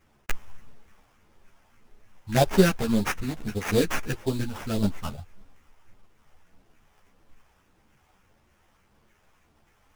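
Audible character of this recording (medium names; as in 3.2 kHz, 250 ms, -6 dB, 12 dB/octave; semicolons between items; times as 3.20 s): phasing stages 4, 1.7 Hz, lowest notch 310–2300 Hz; aliases and images of a low sample rate 4.2 kHz, jitter 20%; a shimmering, thickened sound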